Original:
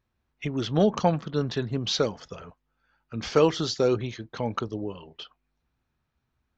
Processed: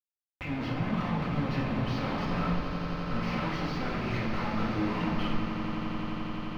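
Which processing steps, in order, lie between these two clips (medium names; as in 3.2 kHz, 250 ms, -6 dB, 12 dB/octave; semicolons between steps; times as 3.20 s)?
high-pass 190 Hz 12 dB/octave; reverse; compression 12:1, threshold -31 dBFS, peak gain reduction 16.5 dB; reverse; waveshaping leveller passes 3; upward compressor, threshold -47 dBFS; static phaser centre 2.4 kHz, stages 8; Schmitt trigger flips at -50 dBFS; distance through air 330 m; on a send: echo with a slow build-up 87 ms, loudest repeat 8, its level -13.5 dB; on the sum: simulated room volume 570 m³, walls mixed, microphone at 2 m; tape noise reduction on one side only encoder only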